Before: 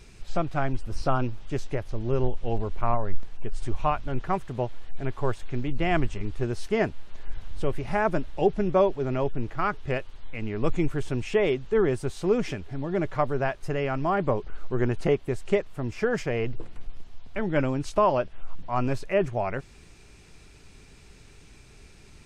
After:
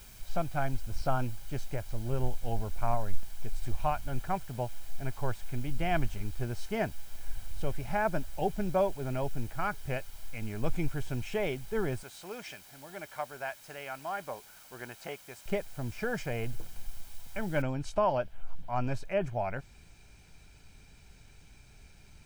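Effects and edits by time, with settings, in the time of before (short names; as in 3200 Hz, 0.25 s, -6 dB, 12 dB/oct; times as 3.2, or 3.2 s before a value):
12.03–15.46 HPF 1200 Hz 6 dB/oct
17.62 noise floor step -49 dB -69 dB
whole clip: comb 1.3 ms, depth 44%; gain -6.5 dB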